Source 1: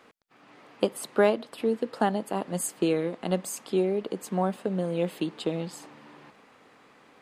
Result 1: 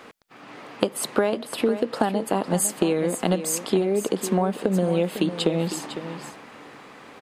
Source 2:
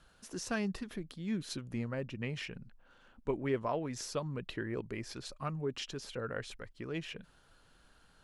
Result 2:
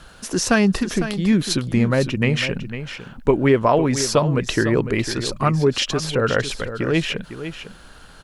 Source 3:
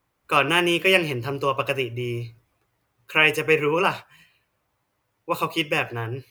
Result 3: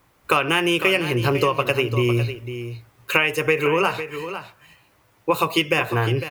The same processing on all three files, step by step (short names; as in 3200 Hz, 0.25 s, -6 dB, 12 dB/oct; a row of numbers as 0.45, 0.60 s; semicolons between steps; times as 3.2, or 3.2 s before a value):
compressor 12:1, threshold -29 dBFS; on a send: echo 0.503 s -11 dB; on the sum: normalise peaks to -3 dBFS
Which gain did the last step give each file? +11.0, +19.5, +13.0 dB